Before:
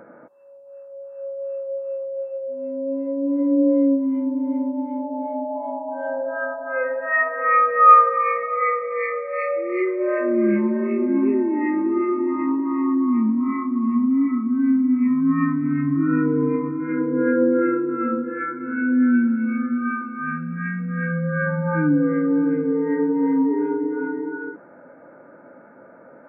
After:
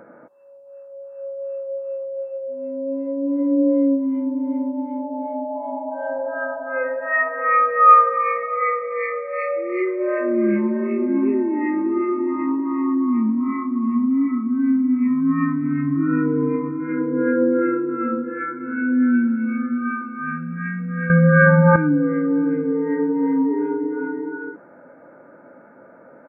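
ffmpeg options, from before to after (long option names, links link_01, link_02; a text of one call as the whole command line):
ffmpeg -i in.wav -filter_complex "[0:a]asplit=2[link_01][link_02];[link_02]afade=type=in:start_time=5.22:duration=0.01,afade=type=out:start_time=6.18:duration=0.01,aecho=0:1:500|1000|1500|2000|2500:0.334965|0.150734|0.0678305|0.0305237|0.0137357[link_03];[link_01][link_03]amix=inputs=2:normalize=0,asplit=3[link_04][link_05][link_06];[link_04]atrim=end=21.102[link_07];[link_05]atrim=start=21.098:end=21.762,asetpts=PTS-STARTPTS,volume=10.5dB[link_08];[link_06]atrim=start=21.758[link_09];[link_07][link_08]acrossfade=duration=0.004:curve1=hsin:curve2=hsin[link_10];[link_10][link_09]acrossfade=duration=0.004:curve1=hsin:curve2=hsin" out.wav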